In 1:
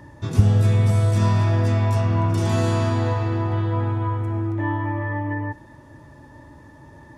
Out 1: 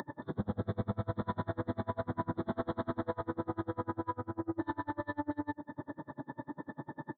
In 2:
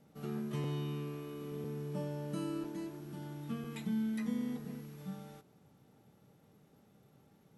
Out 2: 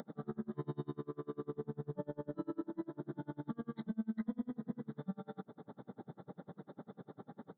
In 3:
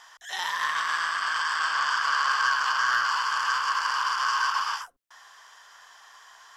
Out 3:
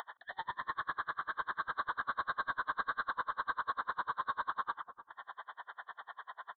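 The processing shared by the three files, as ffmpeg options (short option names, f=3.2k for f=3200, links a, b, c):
-filter_complex "[0:a]highpass=f=150:w=0.5412,highpass=f=150:w=1.3066,acompressor=mode=upward:threshold=-28dB:ratio=2.5,aresample=8000,asoftclip=type=tanh:threshold=-27.5dB,aresample=44100,asuperstop=centerf=2600:order=4:qfactor=1.1,asplit=2[a][b];[b]adelay=299,lowpass=f=840:p=1,volume=-11dB,asplit=2[c][d];[d]adelay=299,lowpass=f=840:p=1,volume=0.36,asplit=2[e][f];[f]adelay=299,lowpass=f=840:p=1,volume=0.36,asplit=2[g][h];[h]adelay=299,lowpass=f=840:p=1,volume=0.36[i];[c][e][g][i]amix=inputs=4:normalize=0[j];[a][j]amix=inputs=2:normalize=0,aeval=exprs='val(0)*pow(10,-35*(0.5-0.5*cos(2*PI*10*n/s))/20)':c=same,volume=1dB"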